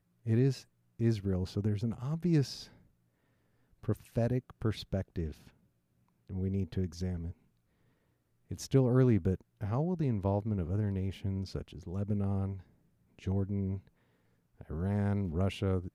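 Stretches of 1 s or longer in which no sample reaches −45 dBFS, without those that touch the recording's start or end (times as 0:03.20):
0:02.66–0:03.83
0:07.31–0:08.51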